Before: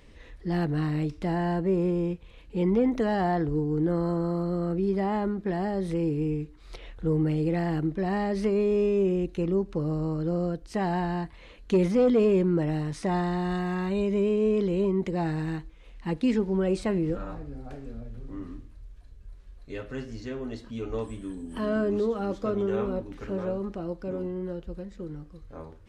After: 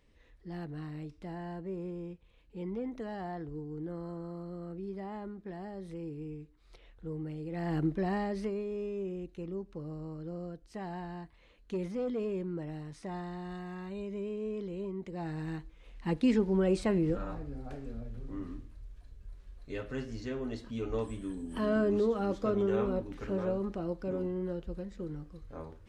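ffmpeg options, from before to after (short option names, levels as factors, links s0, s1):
-af "volume=2.82,afade=t=in:st=7.5:d=0.34:silence=0.251189,afade=t=out:st=7.84:d=0.8:silence=0.281838,afade=t=in:st=15.07:d=1.05:silence=0.281838"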